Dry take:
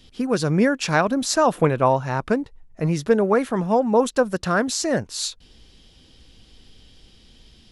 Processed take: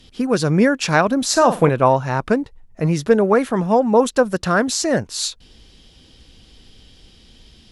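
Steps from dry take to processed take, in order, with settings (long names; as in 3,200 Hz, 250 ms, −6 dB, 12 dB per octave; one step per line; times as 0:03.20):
harmonic generator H 2 −32 dB, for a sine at −4.5 dBFS
0:01.29–0:01.69: flutter between parallel walls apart 8 metres, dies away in 0.27 s
level +3.5 dB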